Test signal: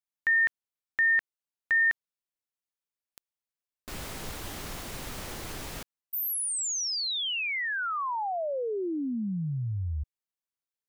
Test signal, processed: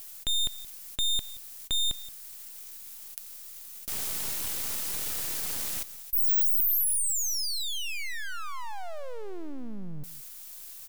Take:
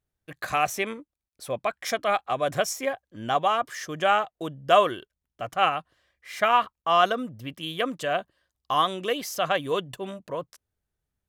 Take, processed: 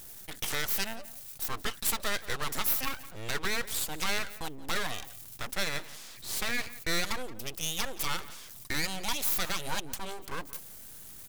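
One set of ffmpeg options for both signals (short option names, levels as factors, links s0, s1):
-filter_complex "[0:a]asplit=2[s0][s1];[s1]acompressor=threshold=0.0178:ratio=6:attack=3.2:release=41,volume=1.26[s2];[s0][s2]amix=inputs=2:normalize=0,alimiter=limit=0.2:level=0:latency=1:release=124,areverse,acompressor=mode=upward:threshold=0.0316:ratio=4:attack=0.12:release=20:knee=2.83:detection=peak,areverse,aeval=exprs='abs(val(0))':c=same,asplit=2[s3][s4];[s4]adelay=174.9,volume=0.141,highshelf=f=4000:g=-3.94[s5];[s3][s5]amix=inputs=2:normalize=0,crystalizer=i=3:c=0,volume=0.447"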